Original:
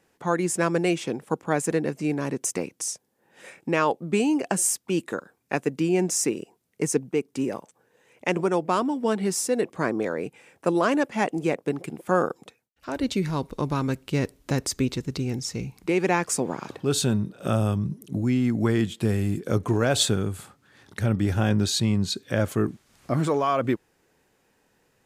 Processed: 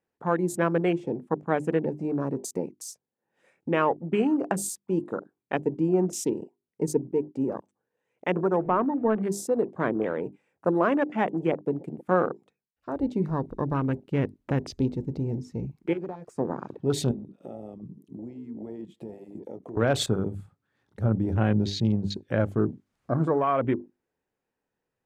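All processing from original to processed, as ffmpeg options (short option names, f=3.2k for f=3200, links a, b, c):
-filter_complex "[0:a]asettb=1/sr,asplit=3[a][b][c];[a]atrim=end=8.574[d];[b]atrim=start=8.57:end=9.23,asetpts=PTS-STARTPTS,afade=t=in:d=0.004:c=qsin,afade=t=out:st=0.656:d=0.004:c=qsin,aeval=exprs='val(0)+0.5*0.0178*sgn(val(0))':c=same,lowpass=f=2.4k:w=0.5412,lowpass=f=2.4k:w=1.3066[e];[c]atrim=start=9.226[f];[d][e]acrossfade=d=0.004:c1=hsin:c2=qsin[g];[g][f]acrossfade=d=0.004:c1=qsin:c2=hsin,asettb=1/sr,asplit=3[h][i][j];[h]atrim=end=15.934[k];[i]atrim=start=15.93:end=16.39,asetpts=PTS-STARTPTS,afade=t=in:d=0.004:c=qsin,afade=t=out:st=0.456:d=0.004:c=qsin,acompressor=threshold=-29dB:ratio=6:attack=3.2:release=140:knee=1:detection=peak,asoftclip=type=hard:threshold=-25.5dB[l];[j]atrim=start=16.386[m];[k][l]acrossfade=d=0.004:c1=hsin:c2=qsin[n];[n][m]acrossfade=d=0.004:c1=qsin:c2=hsin,asettb=1/sr,asplit=3[o][p][q];[o]atrim=end=17.114[r];[p]atrim=start=17.11:end=19.77,asetpts=PTS-STARTPTS,afade=t=in:d=0.004:c=qsin,afade=t=out:st=2.656:d=0.004:c=qsin,highpass=260,bandreject=f=1.5k:w=5.9,acompressor=threshold=-34dB:ratio=5:attack=3.2:release=140:knee=1:detection=peak[s];[q]atrim=start=19.766[t];[r][s]acrossfade=d=0.004:c1=hsin:c2=qsin[u];[u][t]acrossfade=d=0.004:c1=qsin:c2=hsin,bandreject=f=50:t=h:w=6,bandreject=f=100:t=h:w=6,bandreject=f=150:t=h:w=6,bandreject=f=200:t=h:w=6,bandreject=f=250:t=h:w=6,bandreject=f=300:t=h:w=6,bandreject=f=350:t=h:w=6,bandreject=f=400:t=h:w=6,afwtdn=0.02,highshelf=f=2.8k:g=-9.5"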